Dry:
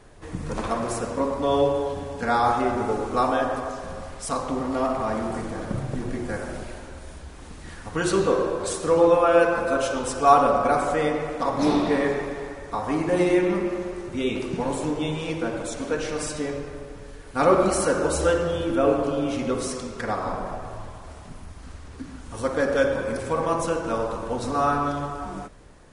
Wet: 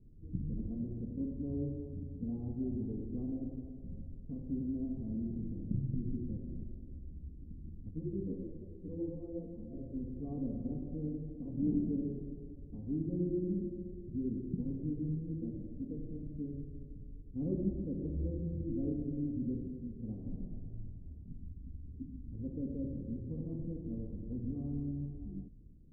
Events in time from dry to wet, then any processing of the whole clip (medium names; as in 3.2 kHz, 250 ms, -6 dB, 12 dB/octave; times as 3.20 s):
7.91–9.79 s: three-phase chorus
whole clip: inverse Chebyshev low-pass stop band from 1.6 kHz, stop band 80 dB; trim -5 dB